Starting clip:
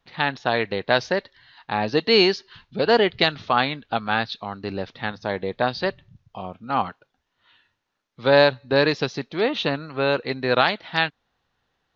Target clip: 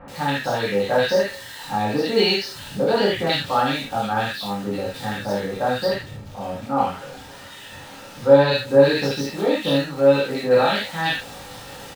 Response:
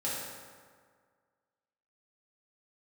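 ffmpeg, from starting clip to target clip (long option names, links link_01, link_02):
-filter_complex "[0:a]aeval=exprs='val(0)+0.5*0.0282*sgn(val(0))':channel_layout=same,asettb=1/sr,asplit=3[link_01][link_02][link_03];[link_01]atrim=end=5.784[link_04];[link_02]atrim=start=5.78:end=8.44,asetpts=PTS-STARTPTS,afade=type=in:duration=0.004:curve=qsin,afade=type=out:start_time=2.656:duration=0.004:curve=qsin,highshelf=frequency=4500:gain=-6[link_05];[link_03]atrim=start=8.436[link_06];[link_04][link_05]acrossfade=duration=0.004:curve1=hsin:curve2=qsin[link_07];[link_07][link_06]acrossfade=duration=0.004:curve1=qsin:curve2=hsin,acrossover=split=1600[link_08][link_09];[link_09]adelay=80[link_10];[link_08][link_10]amix=inputs=2:normalize=0[link_11];[1:a]atrim=start_sample=2205,atrim=end_sample=3969[link_12];[link_11][link_12]afir=irnorm=-1:irlink=0,volume=-3.5dB"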